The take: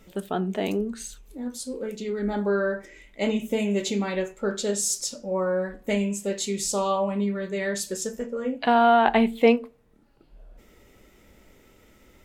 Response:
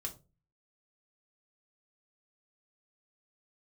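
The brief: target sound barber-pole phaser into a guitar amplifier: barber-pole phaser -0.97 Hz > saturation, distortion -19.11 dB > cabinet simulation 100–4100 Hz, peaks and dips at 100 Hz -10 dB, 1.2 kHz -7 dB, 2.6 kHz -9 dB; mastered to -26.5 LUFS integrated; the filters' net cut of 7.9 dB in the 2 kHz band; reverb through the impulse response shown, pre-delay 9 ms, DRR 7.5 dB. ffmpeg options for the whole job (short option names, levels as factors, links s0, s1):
-filter_complex "[0:a]equalizer=f=2000:t=o:g=-7,asplit=2[s0][s1];[1:a]atrim=start_sample=2205,adelay=9[s2];[s1][s2]afir=irnorm=-1:irlink=0,volume=0.501[s3];[s0][s3]amix=inputs=2:normalize=0,asplit=2[s4][s5];[s5]afreqshift=-0.97[s6];[s4][s6]amix=inputs=2:normalize=1,asoftclip=threshold=0.224,highpass=100,equalizer=f=100:t=q:w=4:g=-10,equalizer=f=1200:t=q:w=4:g=-7,equalizer=f=2600:t=q:w=4:g=-9,lowpass=f=4100:w=0.5412,lowpass=f=4100:w=1.3066,volume=1.41"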